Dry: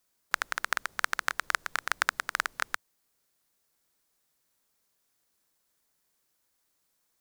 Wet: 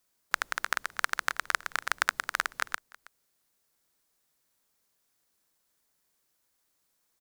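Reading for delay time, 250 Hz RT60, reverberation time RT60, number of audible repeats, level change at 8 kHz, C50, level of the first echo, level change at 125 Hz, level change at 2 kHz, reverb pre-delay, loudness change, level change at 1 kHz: 322 ms, no reverb audible, no reverb audible, 1, 0.0 dB, no reverb audible, −22.0 dB, can't be measured, 0.0 dB, no reverb audible, 0.0 dB, 0.0 dB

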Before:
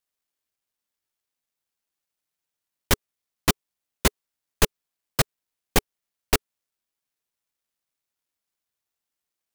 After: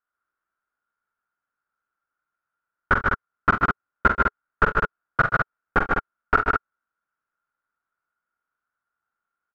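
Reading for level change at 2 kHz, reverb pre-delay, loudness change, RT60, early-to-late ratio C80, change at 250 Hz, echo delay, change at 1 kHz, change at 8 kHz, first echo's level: +10.0 dB, no reverb audible, +3.0 dB, no reverb audible, no reverb audible, 0.0 dB, 45 ms, +11.5 dB, below −25 dB, −6.5 dB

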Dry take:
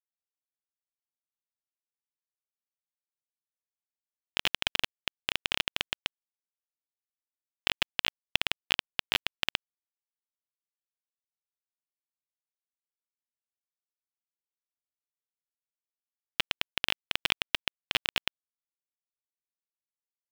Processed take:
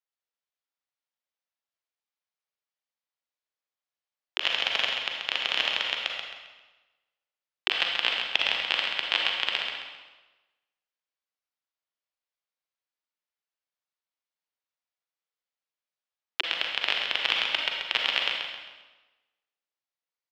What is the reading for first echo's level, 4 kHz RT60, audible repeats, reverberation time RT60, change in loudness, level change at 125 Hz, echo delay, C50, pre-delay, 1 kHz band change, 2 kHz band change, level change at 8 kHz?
−6.5 dB, 1.1 s, 2, 1.2 s, +4.5 dB, can't be measured, 133 ms, 0.0 dB, 36 ms, +5.5 dB, +5.0 dB, −3.5 dB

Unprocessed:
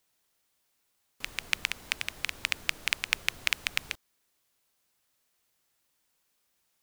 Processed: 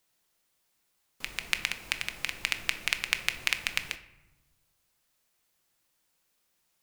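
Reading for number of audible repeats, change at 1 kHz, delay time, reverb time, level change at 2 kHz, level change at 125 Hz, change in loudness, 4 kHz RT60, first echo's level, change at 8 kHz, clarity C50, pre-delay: no echo audible, +0.5 dB, no echo audible, 1.1 s, +0.5 dB, +0.5 dB, +0.5 dB, 0.55 s, no echo audible, +0.5 dB, 13.0 dB, 6 ms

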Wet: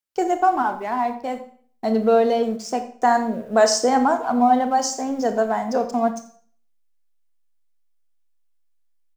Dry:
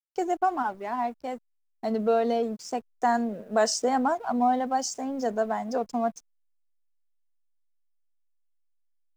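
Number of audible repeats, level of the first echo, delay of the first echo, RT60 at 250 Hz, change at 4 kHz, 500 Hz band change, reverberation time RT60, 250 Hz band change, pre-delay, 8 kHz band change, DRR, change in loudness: 1, −17.5 dB, 85 ms, 0.50 s, +7.0 dB, +7.0 dB, 0.50 s, +6.5 dB, 24 ms, +6.5 dB, 7.5 dB, +7.0 dB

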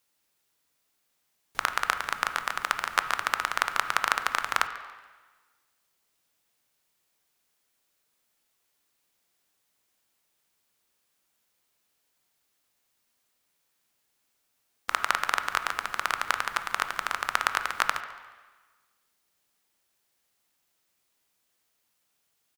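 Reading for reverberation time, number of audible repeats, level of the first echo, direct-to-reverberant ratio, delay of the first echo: 1.3 s, 1, −19.5 dB, 8.5 dB, 142 ms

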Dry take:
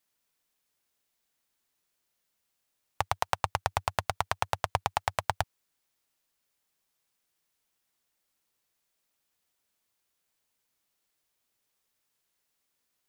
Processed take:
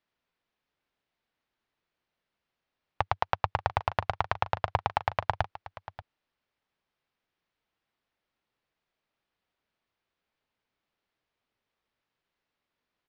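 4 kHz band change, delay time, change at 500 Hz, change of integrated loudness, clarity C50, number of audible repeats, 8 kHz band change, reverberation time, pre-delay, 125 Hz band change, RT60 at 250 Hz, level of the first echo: −3.5 dB, 584 ms, +2.0 dB, +1.0 dB, no reverb audible, 1, below −15 dB, no reverb audible, no reverb audible, +2.5 dB, no reverb audible, −15.5 dB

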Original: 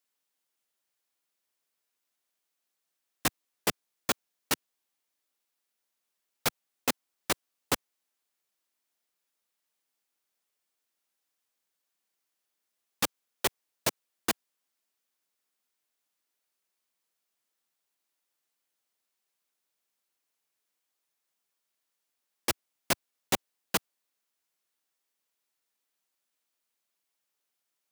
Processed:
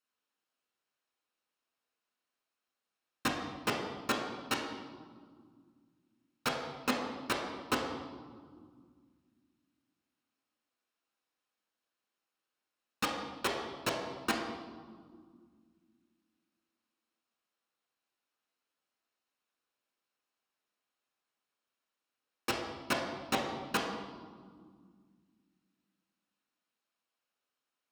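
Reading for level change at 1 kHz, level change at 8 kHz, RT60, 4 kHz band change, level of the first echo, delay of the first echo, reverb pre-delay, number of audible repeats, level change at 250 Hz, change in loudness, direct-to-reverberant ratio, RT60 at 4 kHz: +1.0 dB, −10.0 dB, 1.9 s, −3.5 dB, no echo audible, no echo audible, 4 ms, no echo audible, +2.0 dB, −3.5 dB, −0.5 dB, 1.2 s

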